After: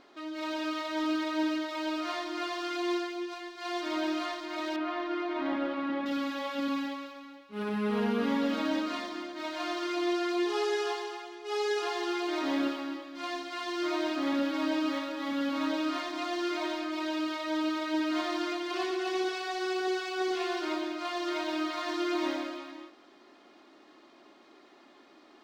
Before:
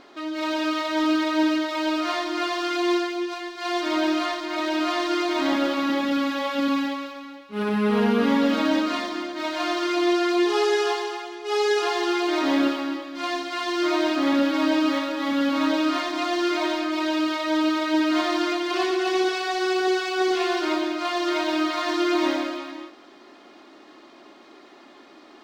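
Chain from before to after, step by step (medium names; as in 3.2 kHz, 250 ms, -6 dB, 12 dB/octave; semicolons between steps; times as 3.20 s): 4.76–6.06 s: low-pass 2.3 kHz 12 dB/octave; trim -8.5 dB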